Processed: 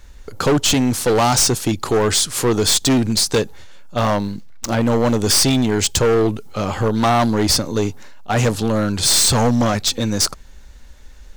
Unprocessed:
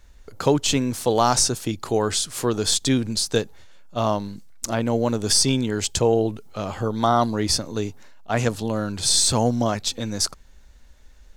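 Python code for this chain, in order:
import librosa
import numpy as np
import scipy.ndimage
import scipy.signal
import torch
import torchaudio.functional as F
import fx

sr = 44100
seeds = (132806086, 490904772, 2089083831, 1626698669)

y = fx.median_filter(x, sr, points=5, at=(3.97, 4.7))
y = fx.notch(y, sr, hz=660.0, q=13.0)
y = np.clip(y, -10.0 ** (-20.5 / 20.0), 10.0 ** (-20.5 / 20.0))
y = y * librosa.db_to_amplitude(8.5)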